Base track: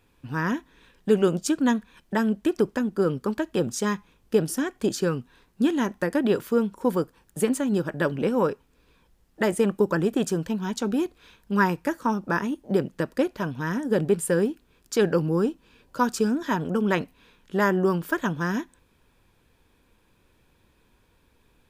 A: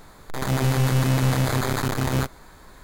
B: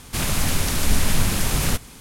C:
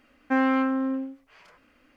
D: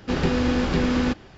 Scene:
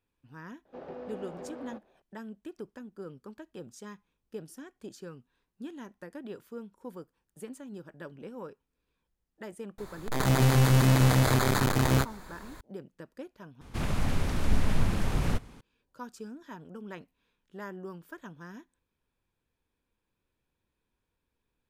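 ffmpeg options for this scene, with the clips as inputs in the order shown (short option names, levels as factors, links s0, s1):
-filter_complex "[0:a]volume=0.106[s0];[4:a]bandpass=f=610:t=q:w=2.5:csg=0[s1];[2:a]lowpass=f=1200:p=1[s2];[s0]asplit=2[s3][s4];[s3]atrim=end=13.614[s5];[s2]atrim=end=2,asetpts=PTS-STARTPTS,volume=0.562[s6];[s4]atrim=start=15.606[s7];[s1]atrim=end=1.37,asetpts=PTS-STARTPTS,volume=0.299,afade=t=in:d=0.004:c=hsin,afade=t=out:st=1.366:d=0.004:c=hsin,adelay=650[s8];[1:a]atrim=end=2.83,asetpts=PTS-STARTPTS,volume=0.891,afade=t=in:d=0.004:c=hsin,afade=t=out:st=2.826:d=0.004:c=hsin,adelay=431298S[s9];[s5][s6]acrossfade=d=0.004:c1=hsin:c2=hsin[s10];[s10][s7]acrossfade=d=0.004:c1=hsin:c2=hsin[s11];[s11][s8][s9]amix=inputs=3:normalize=0"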